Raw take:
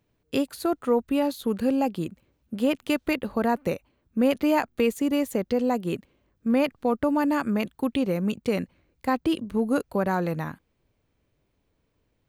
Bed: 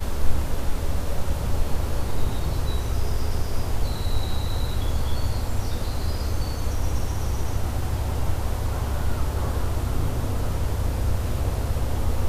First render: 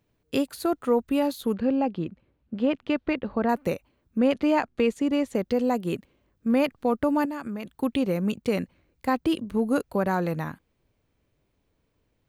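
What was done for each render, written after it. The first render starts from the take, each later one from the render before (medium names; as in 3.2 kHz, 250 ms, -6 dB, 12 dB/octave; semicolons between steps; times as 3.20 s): 1.54–3.49 s: distance through air 230 m; 4.18–5.35 s: distance through air 70 m; 7.25–7.75 s: compression 4:1, threshold -31 dBFS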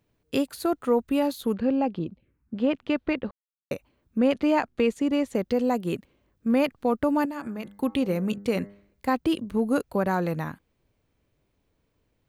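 1.99–2.56 s: touch-sensitive phaser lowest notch 460 Hz, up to 1.9 kHz, full sweep at -30 dBFS; 3.31–3.71 s: mute; 7.28–9.08 s: de-hum 100.8 Hz, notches 21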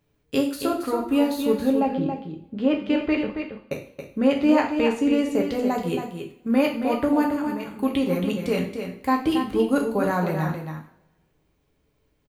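on a send: delay 275 ms -7.5 dB; on the sum: two-slope reverb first 0.45 s, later 1.8 s, from -27 dB, DRR 0.5 dB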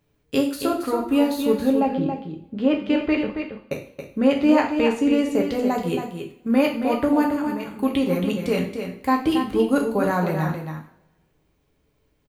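trim +1.5 dB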